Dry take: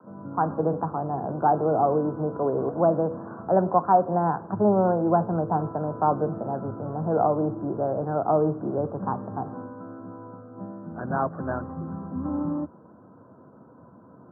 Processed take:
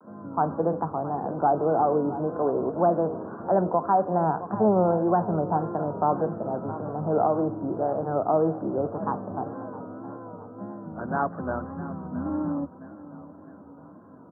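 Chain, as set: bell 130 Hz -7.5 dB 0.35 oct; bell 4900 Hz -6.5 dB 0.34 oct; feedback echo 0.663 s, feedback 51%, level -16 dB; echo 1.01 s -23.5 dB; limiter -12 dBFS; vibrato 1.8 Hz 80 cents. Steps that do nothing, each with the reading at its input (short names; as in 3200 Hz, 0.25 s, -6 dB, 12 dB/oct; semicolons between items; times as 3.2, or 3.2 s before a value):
bell 4900 Hz: input band ends at 1600 Hz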